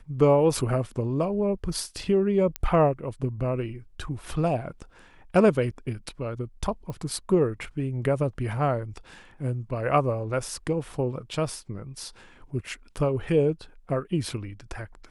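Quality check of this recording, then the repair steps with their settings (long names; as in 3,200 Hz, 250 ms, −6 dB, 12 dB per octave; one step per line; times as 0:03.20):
0:02.56: click −12 dBFS
0:06.90: click −24 dBFS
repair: click removal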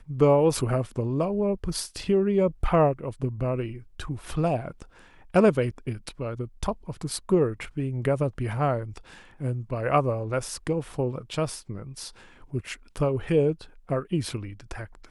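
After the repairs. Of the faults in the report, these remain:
none of them is left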